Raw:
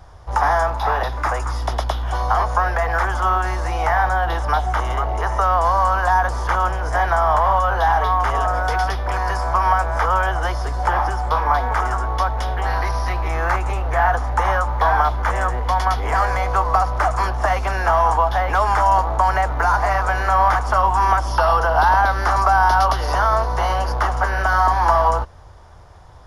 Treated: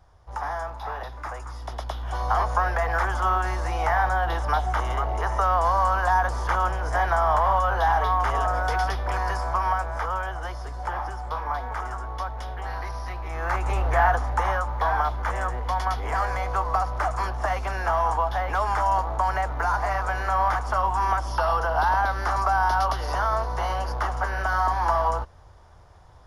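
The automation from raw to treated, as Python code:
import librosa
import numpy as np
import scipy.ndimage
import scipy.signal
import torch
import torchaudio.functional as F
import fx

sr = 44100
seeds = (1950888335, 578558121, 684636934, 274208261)

y = fx.gain(x, sr, db=fx.line((1.59, -13.0), (2.36, -4.5), (9.21, -4.5), (10.29, -11.0), (13.27, -11.0), (13.81, -1.0), (14.64, -7.0)))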